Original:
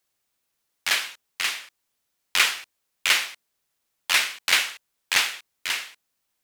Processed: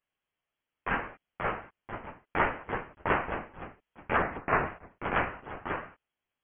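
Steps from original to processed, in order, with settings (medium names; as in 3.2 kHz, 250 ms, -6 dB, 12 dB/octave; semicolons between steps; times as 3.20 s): chorus voices 4, 0.93 Hz, delay 14 ms, depth 4.8 ms; 4.17–4.66 s: high-pass 560 Hz 12 dB/octave; ever faster or slower copies 713 ms, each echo +3 st, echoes 3, each echo -6 dB; frequency inversion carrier 3.3 kHz; trim -2 dB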